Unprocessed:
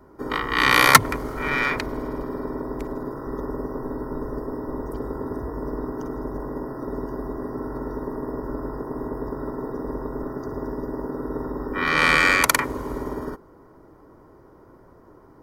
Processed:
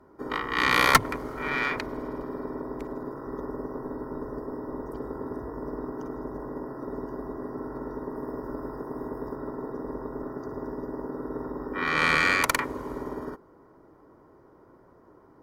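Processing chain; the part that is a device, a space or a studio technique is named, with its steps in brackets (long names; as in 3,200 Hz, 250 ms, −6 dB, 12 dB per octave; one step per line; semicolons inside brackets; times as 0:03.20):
0:08.15–0:09.36: high-shelf EQ 3,800 Hz +5.5 dB
tube preamp driven hard (tube saturation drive 6 dB, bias 0.6; low-shelf EQ 98 Hz −8 dB; high-shelf EQ 4,900 Hz −6 dB)
level −1 dB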